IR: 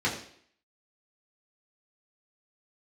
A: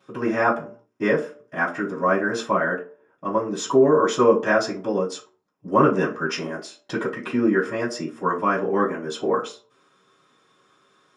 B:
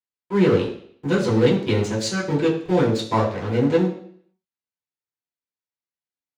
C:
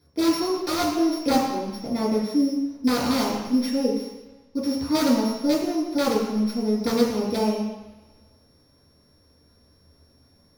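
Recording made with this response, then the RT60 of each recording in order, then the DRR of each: B; 0.45 s, 0.60 s, no single decay rate; -13.5 dB, -6.0 dB, -7.5 dB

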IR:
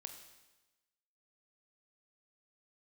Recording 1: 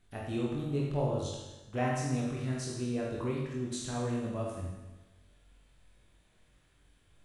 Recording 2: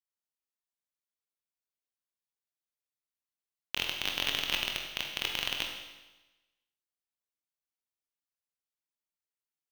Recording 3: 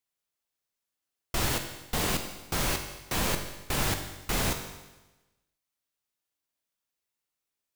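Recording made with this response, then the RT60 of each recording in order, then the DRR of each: 3; 1.1 s, 1.1 s, 1.1 s; -4.5 dB, 1.0 dB, 5.5 dB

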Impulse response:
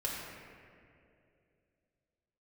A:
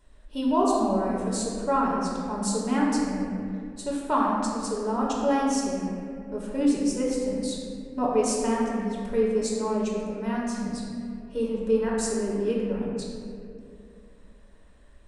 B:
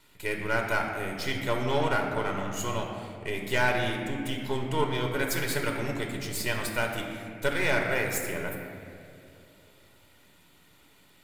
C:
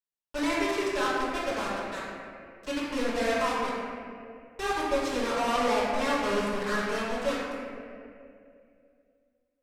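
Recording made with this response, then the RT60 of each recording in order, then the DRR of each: A; 2.6 s, 2.6 s, 2.6 s; -5.0 dB, 1.0 dB, -9.5 dB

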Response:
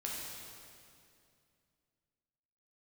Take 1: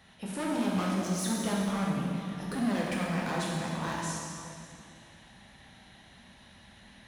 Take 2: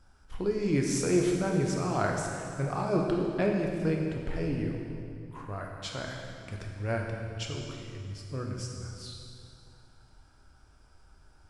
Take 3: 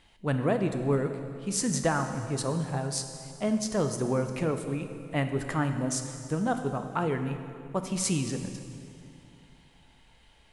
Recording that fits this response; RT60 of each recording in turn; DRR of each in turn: 1; 2.4 s, 2.4 s, 2.4 s; -4.0 dB, 0.0 dB, 6.5 dB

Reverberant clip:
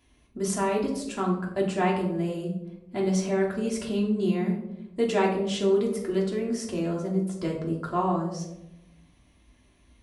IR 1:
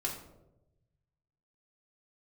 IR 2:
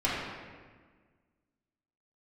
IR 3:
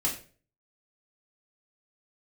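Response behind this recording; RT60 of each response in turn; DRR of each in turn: 1; 0.95 s, 1.5 s, 0.40 s; -3.0 dB, -9.0 dB, -4.5 dB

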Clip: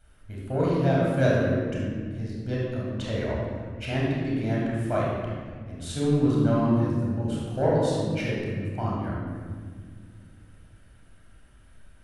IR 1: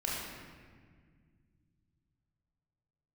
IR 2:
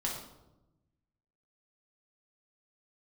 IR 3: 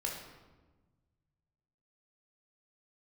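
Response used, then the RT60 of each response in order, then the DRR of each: 1; 1.8 s, 0.95 s, 1.3 s; -5.5 dB, -3.0 dB, -1.0 dB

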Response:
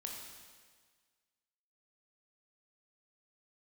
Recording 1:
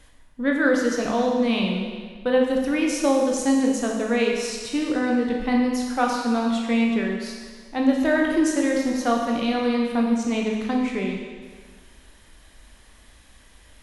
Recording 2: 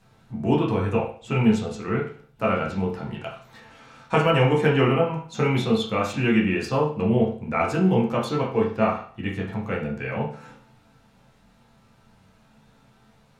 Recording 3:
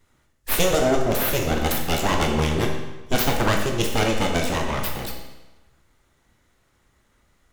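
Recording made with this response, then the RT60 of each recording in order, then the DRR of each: 1; 1.6 s, 0.45 s, 1.1 s; -0.5 dB, -4.5 dB, 1.0 dB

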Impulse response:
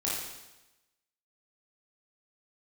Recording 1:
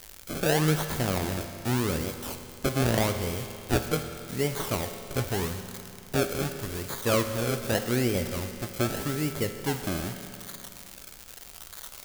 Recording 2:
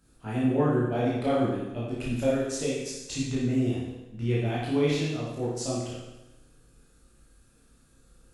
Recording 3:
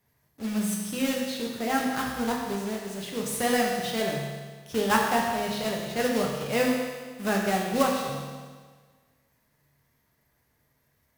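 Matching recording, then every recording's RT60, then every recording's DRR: 2; 2.7 s, 1.0 s, 1.5 s; 6.0 dB, -7.0 dB, -1.0 dB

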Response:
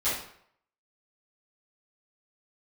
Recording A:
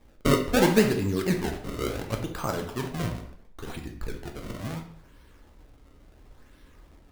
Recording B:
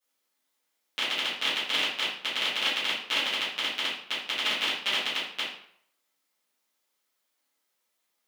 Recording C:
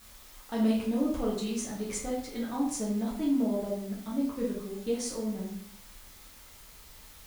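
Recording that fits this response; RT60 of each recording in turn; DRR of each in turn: B; 0.65 s, 0.65 s, 0.65 s; 2.5 dB, -14.5 dB, -5.0 dB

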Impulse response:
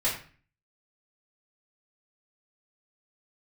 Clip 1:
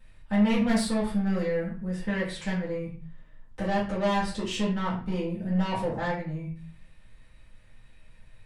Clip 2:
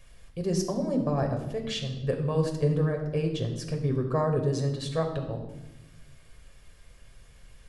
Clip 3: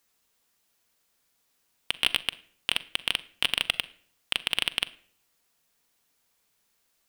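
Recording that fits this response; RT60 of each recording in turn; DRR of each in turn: 1; 0.40 s, 1.0 s, 0.60 s; -8.0 dB, 2.5 dB, 12.5 dB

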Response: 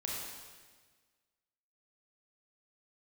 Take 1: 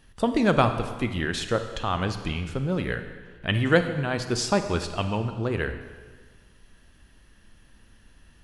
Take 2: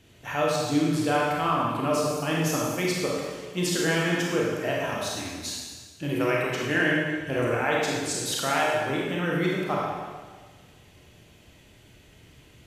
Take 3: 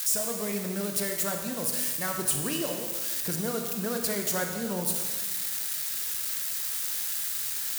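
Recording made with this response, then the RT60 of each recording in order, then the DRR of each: 2; 1.5 s, 1.5 s, 1.5 s; 8.0 dB, -4.0 dB, 3.0 dB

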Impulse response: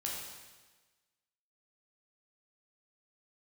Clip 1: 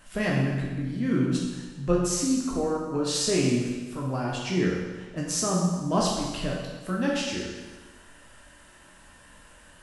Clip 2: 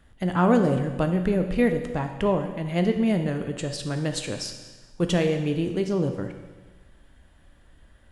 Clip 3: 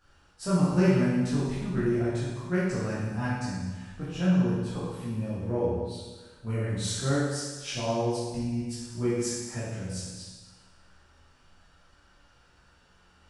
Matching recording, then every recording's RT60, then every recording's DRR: 1; 1.3 s, 1.3 s, 1.3 s; -3.5 dB, 5.5 dB, -11.0 dB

